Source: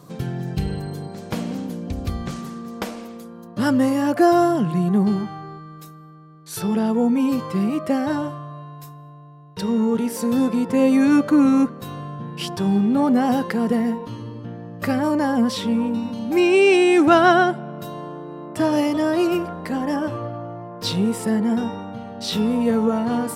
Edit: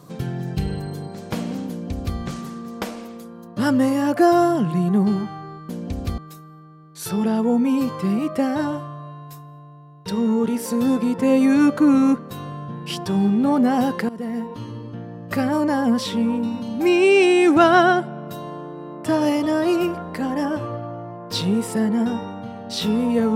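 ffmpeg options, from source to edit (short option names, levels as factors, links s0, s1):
-filter_complex "[0:a]asplit=4[s0][s1][s2][s3];[s0]atrim=end=5.692[s4];[s1]atrim=start=1.688:end=2.182[s5];[s2]atrim=start=5.688:end=13.6,asetpts=PTS-STARTPTS,afade=t=out:st=7.908:d=0.004:c=hsin:silence=0.133352[s6];[s3]atrim=start=13.6,asetpts=PTS-STARTPTS,afade=t=in:d=0.53:silence=0.133352[s7];[s4][s5]acrossfade=d=0.004:c1=hsin:c2=hsin[s8];[s6][s7]concat=n=2:v=0:a=1[s9];[s8][s9]acrossfade=d=0.004:c1=hsin:c2=hsin"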